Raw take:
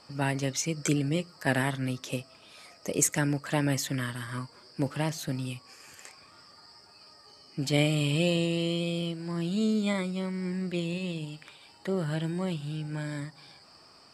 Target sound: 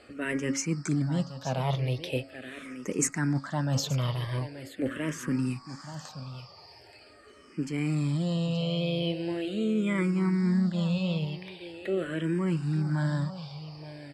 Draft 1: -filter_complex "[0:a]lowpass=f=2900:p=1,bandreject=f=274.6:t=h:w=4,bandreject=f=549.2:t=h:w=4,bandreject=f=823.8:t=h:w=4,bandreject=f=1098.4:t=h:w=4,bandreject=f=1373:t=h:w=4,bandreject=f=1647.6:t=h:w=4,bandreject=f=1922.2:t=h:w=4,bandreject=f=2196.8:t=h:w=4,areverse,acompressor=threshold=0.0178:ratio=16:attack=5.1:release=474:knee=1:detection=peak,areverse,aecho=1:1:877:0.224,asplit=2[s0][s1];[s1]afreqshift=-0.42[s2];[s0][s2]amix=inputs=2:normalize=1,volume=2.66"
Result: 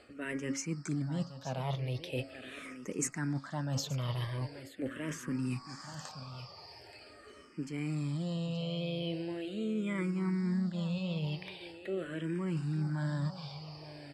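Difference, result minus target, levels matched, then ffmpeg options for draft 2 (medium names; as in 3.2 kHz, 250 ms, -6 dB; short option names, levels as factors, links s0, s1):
compression: peak gain reduction +7 dB
-filter_complex "[0:a]lowpass=f=2900:p=1,bandreject=f=274.6:t=h:w=4,bandreject=f=549.2:t=h:w=4,bandreject=f=823.8:t=h:w=4,bandreject=f=1098.4:t=h:w=4,bandreject=f=1373:t=h:w=4,bandreject=f=1647.6:t=h:w=4,bandreject=f=1922.2:t=h:w=4,bandreject=f=2196.8:t=h:w=4,areverse,acompressor=threshold=0.0422:ratio=16:attack=5.1:release=474:knee=1:detection=peak,areverse,aecho=1:1:877:0.224,asplit=2[s0][s1];[s1]afreqshift=-0.42[s2];[s0][s2]amix=inputs=2:normalize=1,volume=2.66"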